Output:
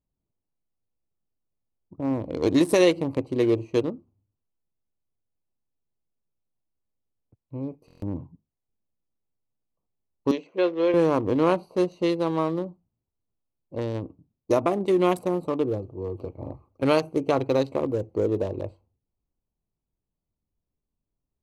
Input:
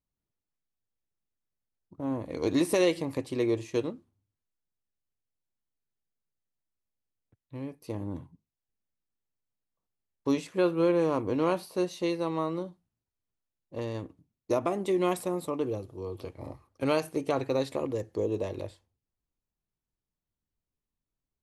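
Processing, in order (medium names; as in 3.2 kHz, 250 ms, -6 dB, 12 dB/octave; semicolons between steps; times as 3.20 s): local Wiener filter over 25 samples; 10.31–10.94 s: cabinet simulation 420–5600 Hz, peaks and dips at 880 Hz -5 dB, 1.3 kHz -8 dB, 4.8 kHz -6 dB; buffer glitch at 7.86 s, samples 1024, times 6; trim +6 dB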